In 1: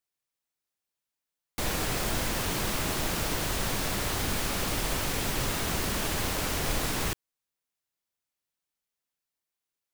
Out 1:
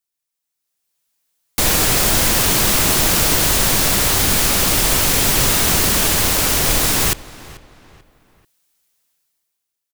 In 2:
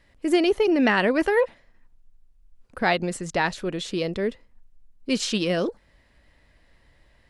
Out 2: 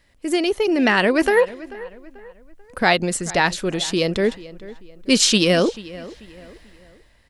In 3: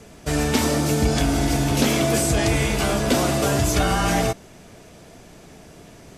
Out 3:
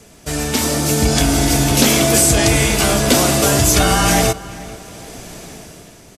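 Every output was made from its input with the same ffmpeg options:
ffmpeg -i in.wav -filter_complex "[0:a]highshelf=frequency=4000:gain=8.5,dynaudnorm=framelen=130:gausssize=13:maxgain=16dB,asplit=2[link_01][link_02];[link_02]adelay=439,lowpass=frequency=3300:poles=1,volume=-18dB,asplit=2[link_03][link_04];[link_04]adelay=439,lowpass=frequency=3300:poles=1,volume=0.4,asplit=2[link_05][link_06];[link_06]adelay=439,lowpass=frequency=3300:poles=1,volume=0.4[link_07];[link_01][link_03][link_05][link_07]amix=inputs=4:normalize=0,volume=-1dB" out.wav

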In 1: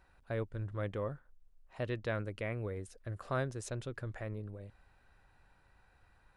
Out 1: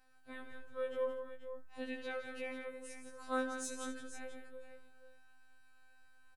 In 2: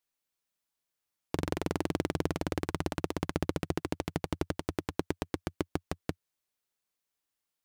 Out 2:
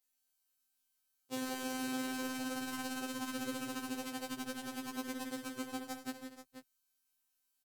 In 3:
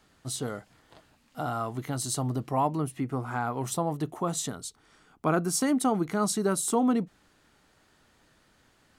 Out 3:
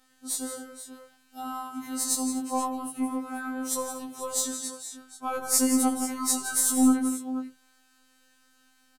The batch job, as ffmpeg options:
ffmpeg -i in.wav -filter_complex "[0:a]aemphasis=mode=production:type=cd,afftfilt=real='hypot(re,im)*cos(PI*b)':imag='0':win_size=2048:overlap=0.75,asplit=2[link_01][link_02];[link_02]aecho=0:1:69|98|169|238|483:0.224|0.158|0.376|0.15|0.266[link_03];[link_01][link_03]amix=inputs=2:normalize=0,aeval=exprs='0.944*(cos(1*acos(clip(val(0)/0.944,-1,1)))-cos(1*PI/2))+0.0422*(cos(7*acos(clip(val(0)/0.944,-1,1)))-cos(7*PI/2))+0.0299*(cos(8*acos(clip(val(0)/0.944,-1,1)))-cos(8*PI/2))':channel_layout=same,afftfilt=real='re*2.45*eq(mod(b,6),0)':imag='im*2.45*eq(mod(b,6),0)':win_size=2048:overlap=0.75,volume=3.5dB" out.wav

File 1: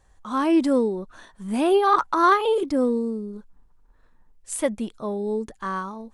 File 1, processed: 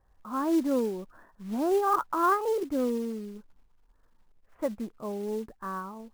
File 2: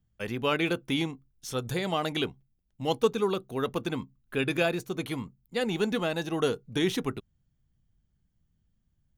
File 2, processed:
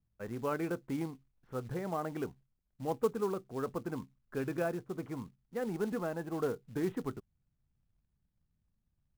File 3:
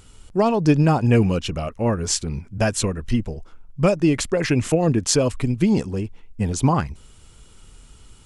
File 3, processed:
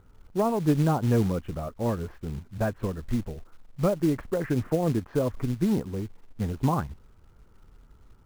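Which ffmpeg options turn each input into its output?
ffmpeg -i in.wav -af "lowpass=frequency=1600:width=0.5412,lowpass=frequency=1600:width=1.3066,acrusher=bits=5:mode=log:mix=0:aa=0.000001,volume=-6.5dB" out.wav

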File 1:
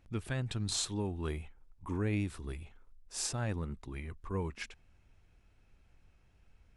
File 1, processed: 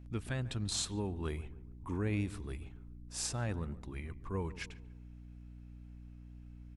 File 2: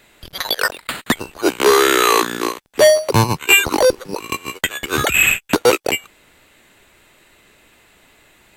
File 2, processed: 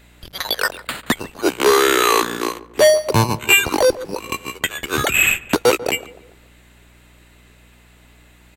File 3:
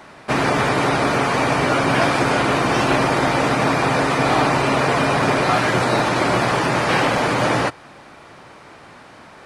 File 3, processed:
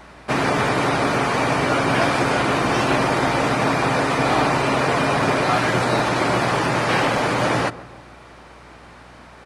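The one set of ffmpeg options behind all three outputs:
ffmpeg -i in.wav -filter_complex "[0:a]asplit=2[link_01][link_02];[link_02]adelay=143,lowpass=frequency=1200:poles=1,volume=-16dB,asplit=2[link_03][link_04];[link_04]adelay=143,lowpass=frequency=1200:poles=1,volume=0.49,asplit=2[link_05][link_06];[link_06]adelay=143,lowpass=frequency=1200:poles=1,volume=0.49,asplit=2[link_07][link_08];[link_08]adelay=143,lowpass=frequency=1200:poles=1,volume=0.49[link_09];[link_03][link_05][link_07][link_09]amix=inputs=4:normalize=0[link_10];[link_01][link_10]amix=inputs=2:normalize=0,aeval=exprs='val(0)+0.00398*(sin(2*PI*60*n/s)+sin(2*PI*2*60*n/s)/2+sin(2*PI*3*60*n/s)/3+sin(2*PI*4*60*n/s)/4+sin(2*PI*5*60*n/s)/5)':channel_layout=same,volume=-1.5dB" out.wav

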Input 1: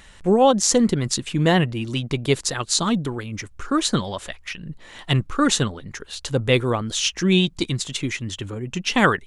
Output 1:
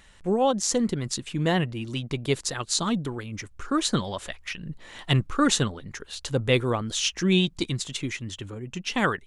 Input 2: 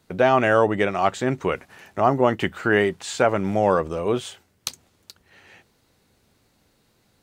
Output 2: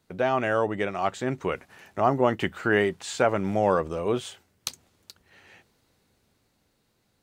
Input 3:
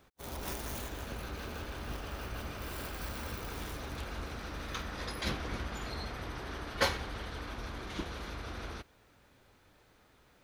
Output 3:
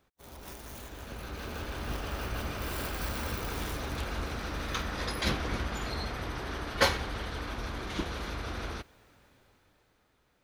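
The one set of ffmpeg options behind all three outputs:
ffmpeg -i in.wav -af "dynaudnorm=framelen=130:gausssize=21:maxgain=12.5dB,volume=-7dB" out.wav

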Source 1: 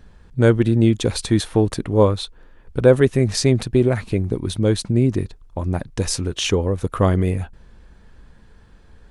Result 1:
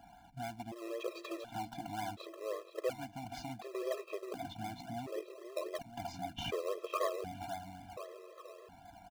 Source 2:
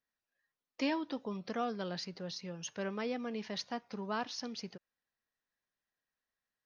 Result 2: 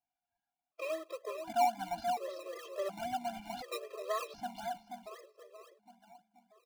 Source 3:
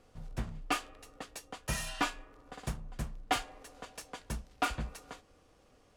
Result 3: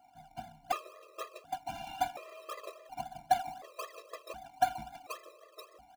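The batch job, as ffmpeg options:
ffmpeg -i in.wav -filter_complex "[0:a]acompressor=threshold=-32dB:ratio=6,aresample=16000,volume=29dB,asoftclip=hard,volume=-29dB,aresample=44100,asplit=3[link_01][link_02][link_03];[link_01]bandpass=frequency=730:width_type=q:width=8,volume=0dB[link_04];[link_02]bandpass=frequency=1090:width_type=q:width=8,volume=-6dB[link_05];[link_03]bandpass=frequency=2440:width_type=q:width=8,volume=-9dB[link_06];[link_04][link_05][link_06]amix=inputs=3:normalize=0,asplit=2[link_07][link_08];[link_08]adelay=481,lowpass=frequency=1900:poles=1,volume=-5.5dB,asplit=2[link_09][link_10];[link_10]adelay=481,lowpass=frequency=1900:poles=1,volume=0.54,asplit=2[link_11][link_12];[link_12]adelay=481,lowpass=frequency=1900:poles=1,volume=0.54,asplit=2[link_13][link_14];[link_14]adelay=481,lowpass=frequency=1900:poles=1,volume=0.54,asplit=2[link_15][link_16];[link_16]adelay=481,lowpass=frequency=1900:poles=1,volume=0.54,asplit=2[link_17][link_18];[link_18]adelay=481,lowpass=frequency=1900:poles=1,volume=0.54,asplit=2[link_19][link_20];[link_20]adelay=481,lowpass=frequency=1900:poles=1,volume=0.54[link_21];[link_07][link_09][link_11][link_13][link_15][link_17][link_19][link_21]amix=inputs=8:normalize=0,asplit=2[link_22][link_23];[link_23]acrusher=samples=22:mix=1:aa=0.000001:lfo=1:lforange=13.2:lforate=3.8,volume=-3dB[link_24];[link_22][link_24]amix=inputs=2:normalize=0,afftfilt=real='re*gt(sin(2*PI*0.69*pts/sr)*(1-2*mod(floor(b*sr/1024/340),2)),0)':imag='im*gt(sin(2*PI*0.69*pts/sr)*(1-2*mod(floor(b*sr/1024/340),2)),0)':win_size=1024:overlap=0.75,volume=12dB" out.wav

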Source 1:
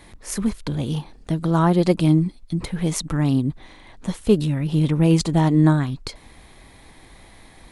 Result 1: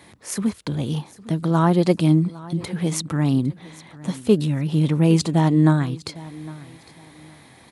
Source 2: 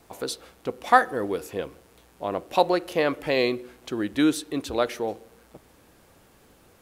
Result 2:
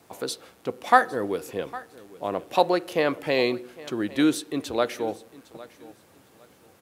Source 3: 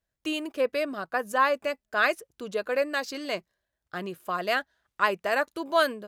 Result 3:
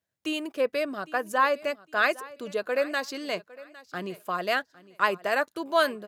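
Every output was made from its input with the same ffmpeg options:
ffmpeg -i in.wav -af "highpass=frequency=89:width=0.5412,highpass=frequency=89:width=1.3066,aecho=1:1:807|1614:0.106|0.0265" out.wav

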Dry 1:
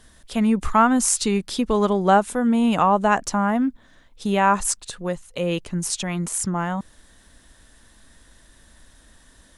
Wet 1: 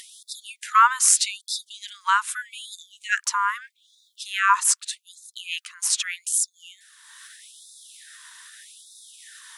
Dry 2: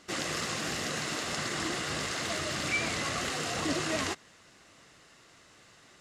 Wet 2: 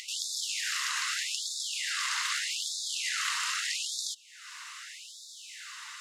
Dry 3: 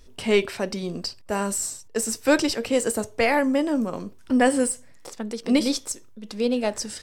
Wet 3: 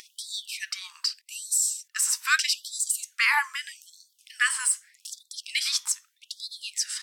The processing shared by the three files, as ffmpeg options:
ffmpeg -i in.wav -af "acompressor=mode=upward:threshold=-35dB:ratio=2.5,equalizer=frequency=130:width_type=o:width=0.83:gain=-10,afftfilt=real='re*gte(b*sr/1024,860*pow(3500/860,0.5+0.5*sin(2*PI*0.81*pts/sr)))':imag='im*gte(b*sr/1024,860*pow(3500/860,0.5+0.5*sin(2*PI*0.81*pts/sr)))':win_size=1024:overlap=0.75,volume=4dB" out.wav

